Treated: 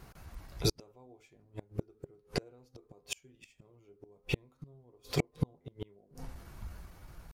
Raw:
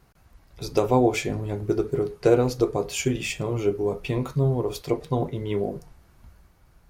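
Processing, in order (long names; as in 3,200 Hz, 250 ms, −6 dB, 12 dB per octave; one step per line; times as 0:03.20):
hum removal 260 Hz, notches 6
in parallel at −2.5 dB: brickwall limiter −16 dBFS, peak gain reduction 9.5 dB
on the sum: gate with flip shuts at −16 dBFS, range −41 dB
tempo change 0.94×
level +1 dB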